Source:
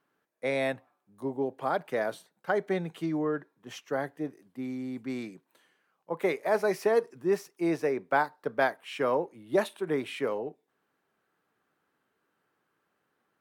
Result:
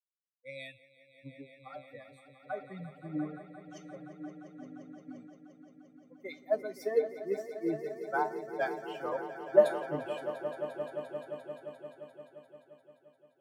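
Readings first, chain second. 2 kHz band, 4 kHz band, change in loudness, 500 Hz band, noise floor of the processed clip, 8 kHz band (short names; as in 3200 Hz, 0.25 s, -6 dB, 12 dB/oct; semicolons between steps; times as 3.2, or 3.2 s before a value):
-8.5 dB, -9.0 dB, -4.0 dB, -3.5 dB, -67 dBFS, n/a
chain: per-bin expansion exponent 3; low shelf 380 Hz +4.5 dB; resonator 150 Hz, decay 0.27 s, harmonics all, mix 70%; dynamic EQ 600 Hz, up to +8 dB, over -56 dBFS, Q 4.4; swelling echo 0.174 s, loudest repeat 5, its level -11 dB; three-band expander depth 70%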